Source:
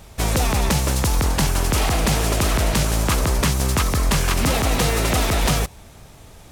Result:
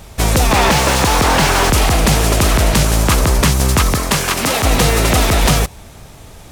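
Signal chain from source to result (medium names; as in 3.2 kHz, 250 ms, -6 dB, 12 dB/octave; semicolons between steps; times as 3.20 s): 0.51–1.70 s: overdrive pedal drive 29 dB, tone 2.3 kHz, clips at -10.5 dBFS; 3.94–4.62 s: high-pass 130 Hz -> 470 Hz 6 dB/octave; trim +6.5 dB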